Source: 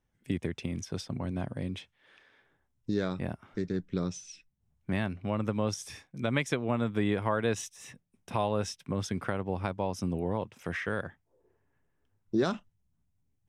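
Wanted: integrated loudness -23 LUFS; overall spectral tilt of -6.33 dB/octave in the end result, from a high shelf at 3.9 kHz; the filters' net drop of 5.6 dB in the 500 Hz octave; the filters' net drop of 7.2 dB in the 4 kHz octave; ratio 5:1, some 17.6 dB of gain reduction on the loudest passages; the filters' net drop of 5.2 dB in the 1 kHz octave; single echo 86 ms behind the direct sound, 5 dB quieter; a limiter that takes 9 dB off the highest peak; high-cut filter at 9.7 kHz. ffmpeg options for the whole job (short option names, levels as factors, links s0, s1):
-af "lowpass=9700,equalizer=f=500:t=o:g=-6,equalizer=f=1000:t=o:g=-4,highshelf=f=3900:g=-7,equalizer=f=4000:t=o:g=-4.5,acompressor=threshold=0.00447:ratio=5,alimiter=level_in=5.96:limit=0.0631:level=0:latency=1,volume=0.168,aecho=1:1:86:0.562,volume=25.1"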